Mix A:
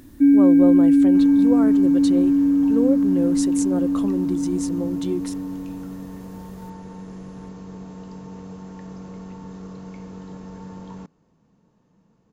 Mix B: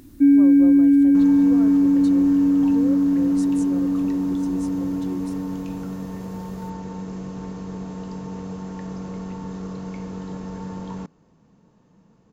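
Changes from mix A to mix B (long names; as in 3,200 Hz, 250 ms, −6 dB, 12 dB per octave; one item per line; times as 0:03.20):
speech −11.0 dB
second sound +5.0 dB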